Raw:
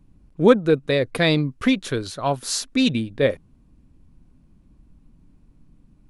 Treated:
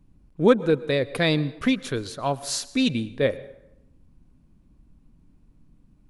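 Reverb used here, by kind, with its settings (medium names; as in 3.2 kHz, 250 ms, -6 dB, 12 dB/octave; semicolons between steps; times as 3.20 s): plate-style reverb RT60 0.86 s, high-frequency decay 0.65×, pre-delay 100 ms, DRR 18 dB; trim -3 dB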